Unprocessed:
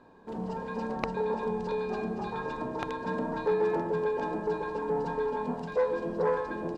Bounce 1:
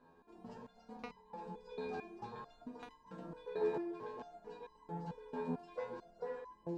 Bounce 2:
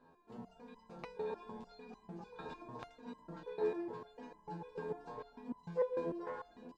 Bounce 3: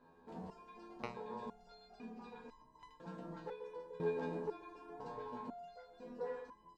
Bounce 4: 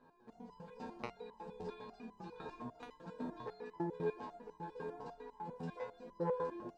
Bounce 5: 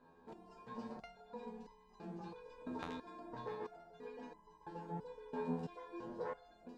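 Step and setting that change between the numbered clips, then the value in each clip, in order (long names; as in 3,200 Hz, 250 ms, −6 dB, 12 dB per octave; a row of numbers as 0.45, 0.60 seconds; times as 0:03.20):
step-sequenced resonator, speed: 4.5, 6.7, 2, 10, 3 Hertz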